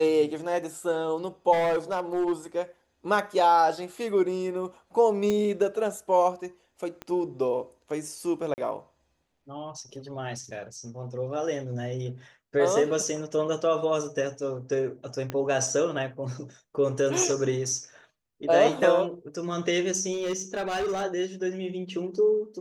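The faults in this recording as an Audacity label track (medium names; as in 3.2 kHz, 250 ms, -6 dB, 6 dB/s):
1.520000	2.320000	clipped -21.5 dBFS
5.300000	5.300000	pop -15 dBFS
7.020000	7.020000	pop -22 dBFS
8.540000	8.580000	dropout 39 ms
15.300000	15.300000	pop -17 dBFS
20.120000	21.040000	clipped -25 dBFS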